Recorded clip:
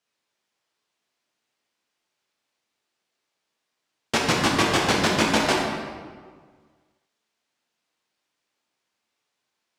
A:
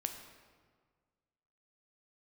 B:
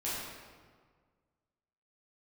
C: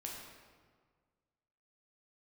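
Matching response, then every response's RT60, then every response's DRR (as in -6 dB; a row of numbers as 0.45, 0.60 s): C; 1.7, 1.7, 1.7 s; 5.0, -10.0, -2.5 dB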